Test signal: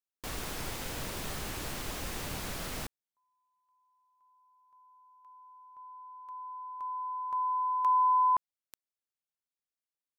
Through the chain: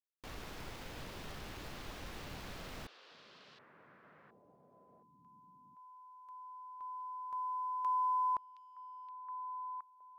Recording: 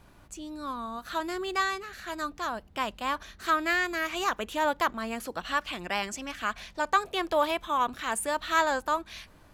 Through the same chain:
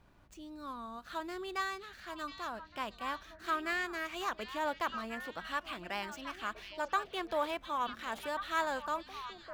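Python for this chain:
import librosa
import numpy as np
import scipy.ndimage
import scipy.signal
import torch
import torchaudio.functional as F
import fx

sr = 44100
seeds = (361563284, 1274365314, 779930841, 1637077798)

y = scipy.signal.medfilt(x, 5)
y = fx.echo_stepped(y, sr, ms=719, hz=3600.0, octaves=-1.4, feedback_pct=70, wet_db=-5.5)
y = F.gain(torch.from_numpy(y), -8.0).numpy()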